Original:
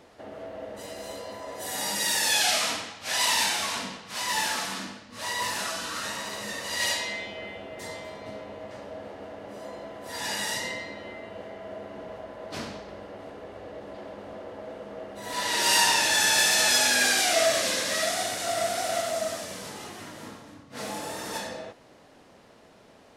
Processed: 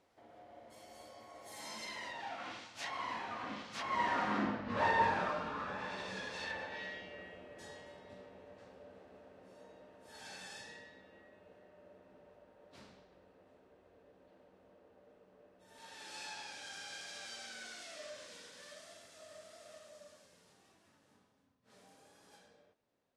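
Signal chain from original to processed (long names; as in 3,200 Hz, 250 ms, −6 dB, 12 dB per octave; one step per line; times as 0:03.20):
source passing by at 0:04.65, 30 m/s, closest 7.2 metres
treble cut that deepens with the level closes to 1,400 Hz, closed at −41.5 dBFS
level +8 dB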